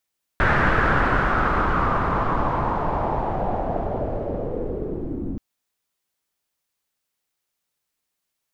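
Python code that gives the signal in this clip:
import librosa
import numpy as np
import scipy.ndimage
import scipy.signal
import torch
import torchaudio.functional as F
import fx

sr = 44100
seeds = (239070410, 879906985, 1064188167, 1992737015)

y = fx.riser_noise(sr, seeds[0], length_s=4.98, colour='pink', kind='lowpass', start_hz=1600.0, end_hz=270.0, q=3.5, swell_db=-10, law='linear')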